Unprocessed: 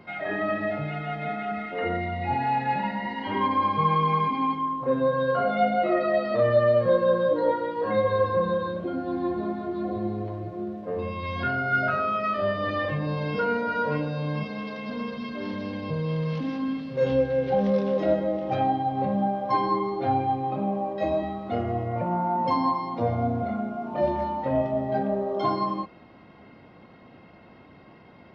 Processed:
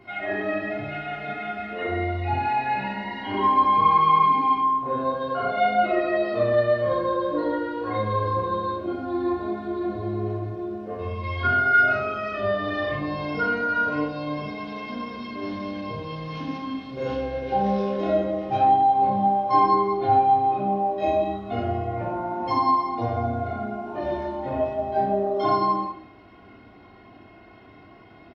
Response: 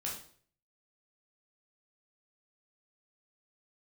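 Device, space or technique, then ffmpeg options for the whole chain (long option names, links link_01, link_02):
microphone above a desk: -filter_complex "[0:a]aecho=1:1:2.8:0.59[link_01];[1:a]atrim=start_sample=2205[link_02];[link_01][link_02]afir=irnorm=-1:irlink=0"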